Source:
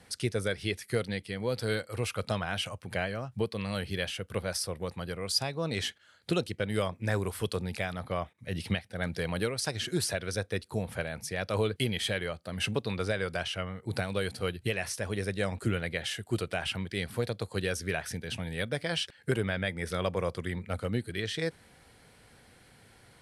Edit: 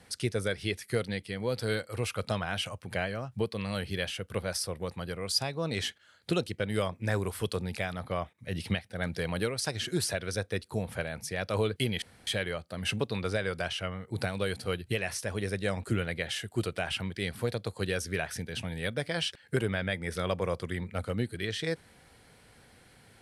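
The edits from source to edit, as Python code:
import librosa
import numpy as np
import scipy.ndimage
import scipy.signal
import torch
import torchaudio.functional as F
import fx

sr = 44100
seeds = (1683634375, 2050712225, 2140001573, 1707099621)

y = fx.edit(x, sr, fx.insert_room_tone(at_s=12.02, length_s=0.25), tone=tone)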